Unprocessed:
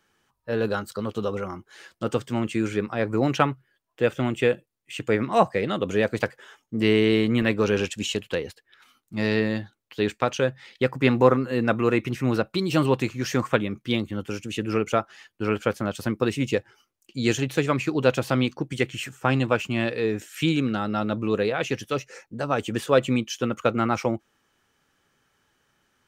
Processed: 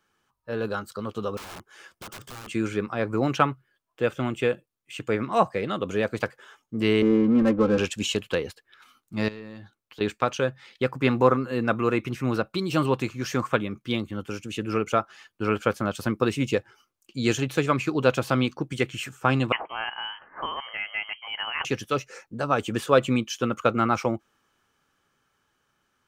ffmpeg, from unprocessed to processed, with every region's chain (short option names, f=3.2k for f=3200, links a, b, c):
-filter_complex "[0:a]asettb=1/sr,asplit=3[a][b][c];[a]atrim=end=1.374[d];[b]atrim=start=1.37:end=2.47,asetpts=PTS-STARTPTS,afade=t=in:d=0.004:c=qsin,afade=t=out:st=1.096:d=0.004:c=qsin,bandreject=f=4.1k:w=6.2,acompressor=threshold=-31dB:ratio=3:attack=3.2:release=140:knee=1:detection=peak,aeval=exprs='(mod(47.3*val(0)+1,2)-1)/47.3':c=same[e];[c]atrim=start=2.466[f];[d][e]acrossfade=d=0.004:c1=hsin:c2=qsin[g];[g][f]acrossfade=d=0.004:c1=qsin:c2=hsin,asettb=1/sr,asplit=3[h][i][j];[h]atrim=end=7.024[k];[i]atrim=start=7.02:end=7.78,asetpts=PTS-STARTPTS,afade=t=in:d=0.004:c=qsin,afade=t=out:st=0.756:d=0.004:c=qsin,lowpass=1k,aecho=1:1:3.8:0.92,atrim=end_sample=33516,adynamicsmooth=sensitivity=5:basefreq=650[l];[j]atrim=start=7.776[m];[k][l]acrossfade=d=0.004:c1=hsin:c2=qsin[n];[n][m]acrossfade=d=0.004:c1=qsin:c2=hsin,asettb=1/sr,asplit=3[o][p][q];[o]atrim=end=9.284[r];[p]atrim=start=9.28:end=10.01,asetpts=PTS-STARTPTS,afade=t=in:d=0.004:c=qsin,afade=t=out:st=0.726:d=0.004:c=qsin,acompressor=threshold=-34dB:ratio=4:attack=3.2:release=140:knee=1:detection=peak,aeval=exprs='(tanh(7.08*val(0)+0.5)-tanh(0.5))/7.08':c=same[s];[q]atrim=start=10.006[t];[r][s]acrossfade=d=0.004:c1=hsin:c2=qsin[u];[u][t]acrossfade=d=0.004:c1=qsin:c2=hsin,asettb=1/sr,asplit=3[v][w][x];[v]atrim=end=19.524[y];[w]atrim=start=19.52:end=21.65,asetpts=PTS-STARTPTS,afade=t=in:d=0.004:c=qsin,afade=t=out:st=2.126:d=0.004:c=qsin,highpass=820,lowpass=f=2.9k:t=q:w=0.5098,lowpass=f=2.9k:t=q:w=0.6013,lowpass=f=2.9k:t=q:w=0.9,lowpass=f=2.9k:t=q:w=2.563,afreqshift=-3400[z];[x]atrim=start=21.646[aa];[y][z]acrossfade=d=0.004:c1=hsin:c2=qsin[ab];[ab][aa]acrossfade=d=0.004:c1=qsin:c2=hsin,equalizer=f=1.2k:t=o:w=0.55:g=4.5,bandreject=f=1.9k:w=18,dynaudnorm=f=160:g=21:m=11.5dB,volume=-4.5dB"